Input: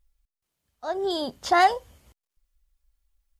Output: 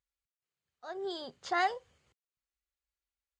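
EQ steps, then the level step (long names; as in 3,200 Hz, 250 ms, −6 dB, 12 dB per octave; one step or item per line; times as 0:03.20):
loudspeaker in its box 140–7,000 Hz, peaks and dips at 210 Hz −8 dB, 290 Hz −10 dB, 630 Hz −7 dB, 920 Hz −6 dB, 3,400 Hz −3 dB, 5,500 Hz −7 dB
−7.5 dB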